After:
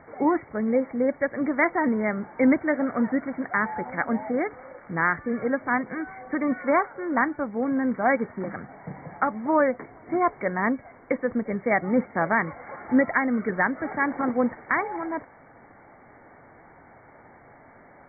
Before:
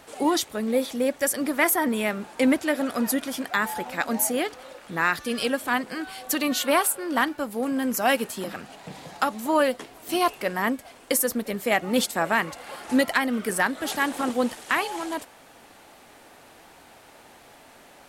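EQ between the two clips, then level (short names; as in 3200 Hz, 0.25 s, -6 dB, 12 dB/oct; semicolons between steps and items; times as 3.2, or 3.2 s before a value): brick-wall FIR low-pass 2300 Hz; bell 120 Hz +7 dB 1.2 oct; 0.0 dB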